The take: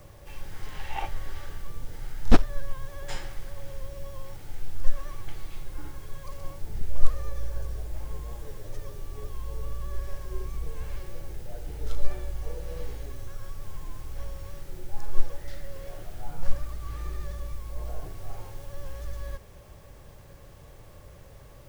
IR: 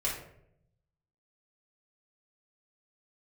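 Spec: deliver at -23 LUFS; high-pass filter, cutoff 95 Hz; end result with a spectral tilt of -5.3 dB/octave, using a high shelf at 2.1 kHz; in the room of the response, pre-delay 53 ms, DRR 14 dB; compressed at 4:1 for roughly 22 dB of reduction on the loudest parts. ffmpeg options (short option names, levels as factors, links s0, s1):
-filter_complex "[0:a]highpass=95,highshelf=f=2100:g=-5,acompressor=threshold=0.00562:ratio=4,asplit=2[s0][s1];[1:a]atrim=start_sample=2205,adelay=53[s2];[s1][s2]afir=irnorm=-1:irlink=0,volume=0.1[s3];[s0][s3]amix=inputs=2:normalize=0,volume=21.1"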